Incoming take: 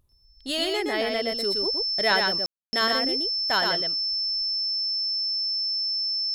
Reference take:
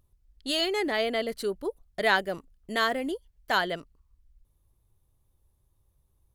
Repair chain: notch 5300 Hz, Q 30; room tone fill 2.46–2.73; inverse comb 0.119 s -4 dB

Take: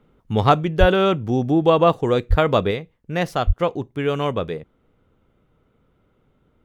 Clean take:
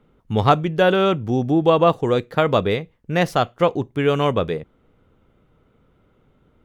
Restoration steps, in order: de-plosive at 0.79/2.29/3.46; gain correction +3.5 dB, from 2.71

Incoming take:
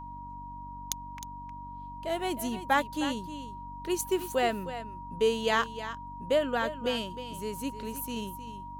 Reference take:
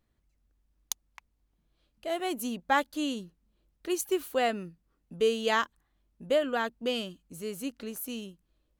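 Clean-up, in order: de-hum 47.9 Hz, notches 6; notch 950 Hz, Q 30; inverse comb 0.311 s -12 dB; gain correction -3.5 dB, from 8.16

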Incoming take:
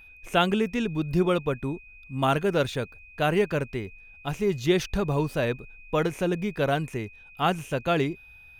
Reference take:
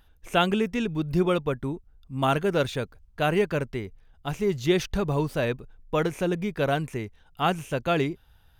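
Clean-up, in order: notch 2500 Hz, Q 30

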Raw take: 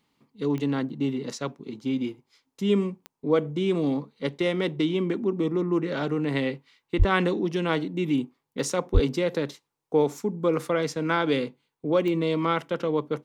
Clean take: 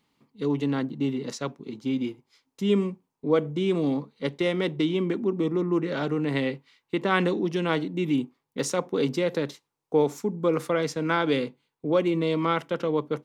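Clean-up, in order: de-click; 6.98–7.1 HPF 140 Hz 24 dB/oct; 8.93–9.05 HPF 140 Hz 24 dB/oct

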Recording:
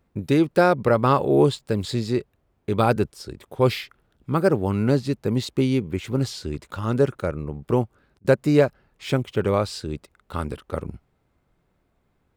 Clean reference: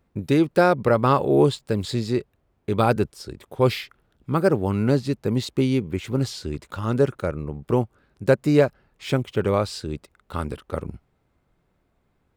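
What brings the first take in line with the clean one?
interpolate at 8.19, 55 ms

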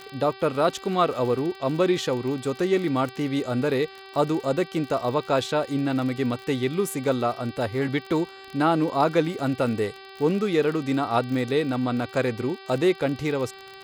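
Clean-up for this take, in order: de-click; de-hum 386.9 Hz, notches 13

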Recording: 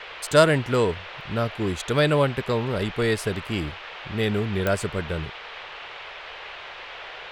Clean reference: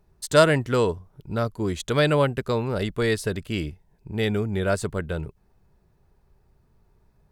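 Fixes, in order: de-click; noise print and reduce 23 dB

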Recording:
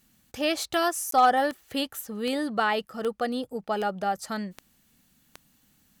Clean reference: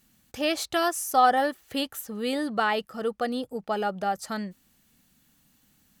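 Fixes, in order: clip repair -12 dBFS; de-click; interpolate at 1.11, 13 ms

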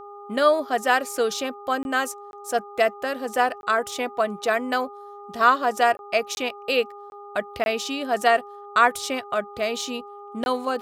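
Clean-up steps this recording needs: de-hum 407.5 Hz, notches 3; interpolate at 1.83/2.31/3.61/5.97/6.35/7.1/7.64/10.44, 21 ms

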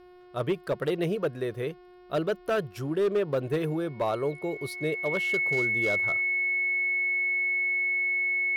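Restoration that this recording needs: clip repair -20.5 dBFS; de-hum 360.2 Hz, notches 15; notch 2200 Hz, Q 30

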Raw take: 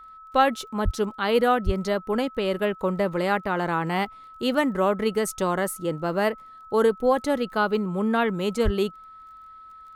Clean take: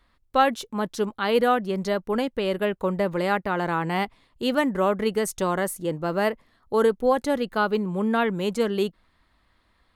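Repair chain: de-click; notch 1300 Hz, Q 30; de-plosive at 0.84/1.65/8.64

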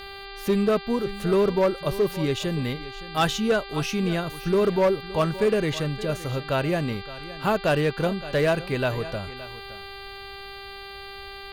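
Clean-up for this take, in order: clip repair -15 dBFS; de-hum 395.1 Hz, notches 12; inverse comb 0.568 s -16.5 dB

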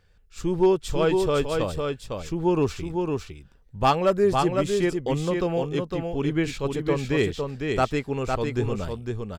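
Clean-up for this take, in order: clip repair -12 dBFS; inverse comb 0.506 s -4.5 dB

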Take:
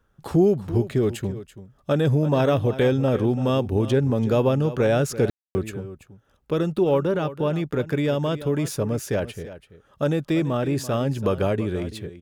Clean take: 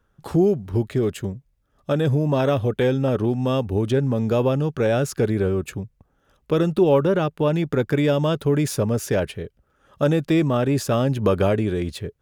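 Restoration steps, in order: room tone fill 5.3–5.55; inverse comb 0.335 s -14.5 dB; gain 0 dB, from 5.68 s +3.5 dB

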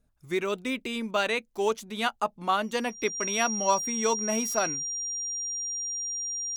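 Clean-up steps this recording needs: notch 5700 Hz, Q 30

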